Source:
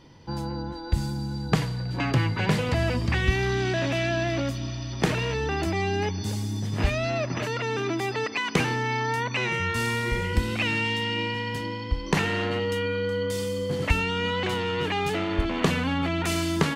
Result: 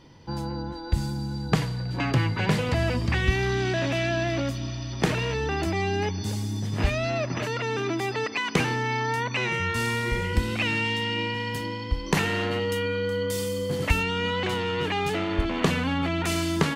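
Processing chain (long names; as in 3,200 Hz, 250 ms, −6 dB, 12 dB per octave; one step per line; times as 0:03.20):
0:11.40–0:14.03: high-shelf EQ 10,000 Hz +10.5 dB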